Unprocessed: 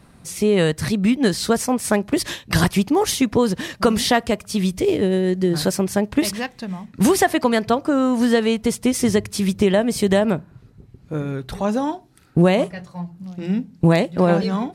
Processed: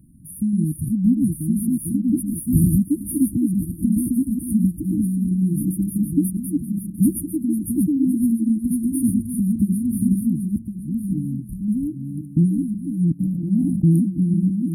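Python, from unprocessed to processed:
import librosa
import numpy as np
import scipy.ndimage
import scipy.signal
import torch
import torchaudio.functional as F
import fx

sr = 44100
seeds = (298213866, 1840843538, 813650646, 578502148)

y = fx.reverse_delay_fb(x, sr, ms=531, feedback_pct=42, wet_db=-3.5)
y = fx.leveller(y, sr, passes=1, at=(2.31, 2.77))
y = fx.brickwall_bandstop(y, sr, low_hz=330.0, high_hz=9100.0)
y = fx.sustainer(y, sr, db_per_s=26.0, at=(13.19, 14.01), fade=0.02)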